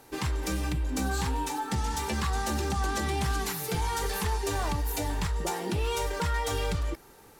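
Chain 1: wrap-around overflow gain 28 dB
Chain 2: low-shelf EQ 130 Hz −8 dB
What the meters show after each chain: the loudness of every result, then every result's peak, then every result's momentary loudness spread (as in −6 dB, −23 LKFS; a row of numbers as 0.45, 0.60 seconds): −31.0, −32.0 LKFS; −28.0, −20.0 dBFS; 1, 3 LU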